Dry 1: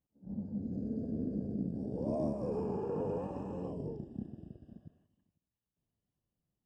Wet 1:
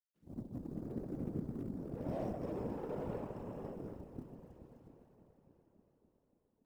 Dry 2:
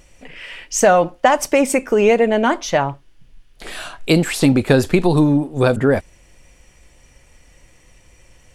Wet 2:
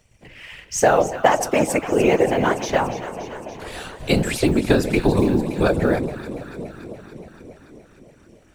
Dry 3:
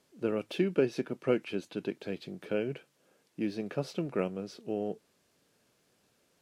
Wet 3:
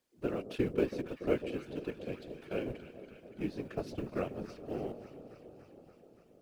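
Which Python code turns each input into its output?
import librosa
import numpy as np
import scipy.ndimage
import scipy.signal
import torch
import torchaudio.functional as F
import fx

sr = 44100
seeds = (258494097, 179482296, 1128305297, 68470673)

y = fx.law_mismatch(x, sr, coded='A')
y = fx.echo_alternate(y, sr, ms=143, hz=850.0, feedback_pct=84, wet_db=-11)
y = fx.whisperise(y, sr, seeds[0])
y = F.gain(torch.from_numpy(y), -3.5).numpy()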